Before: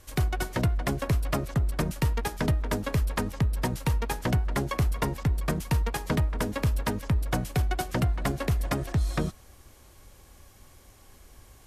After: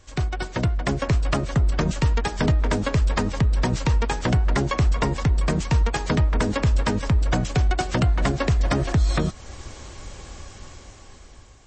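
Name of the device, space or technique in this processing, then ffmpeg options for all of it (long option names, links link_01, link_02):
low-bitrate web radio: -af "dynaudnorm=framelen=410:gausssize=7:maxgain=16dB,alimiter=limit=-13.5dB:level=0:latency=1:release=333,volume=1.5dB" -ar 22050 -c:a libmp3lame -b:a 32k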